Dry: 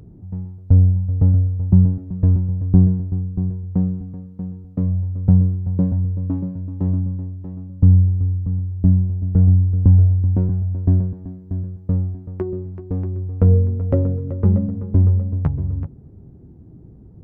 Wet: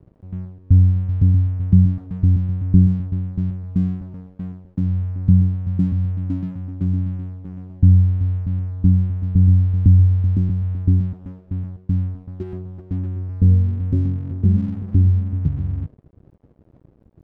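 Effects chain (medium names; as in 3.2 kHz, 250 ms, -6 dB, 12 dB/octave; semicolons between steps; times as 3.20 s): inverse Chebyshev low-pass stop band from 650 Hz, stop band 40 dB; crossover distortion -42.5 dBFS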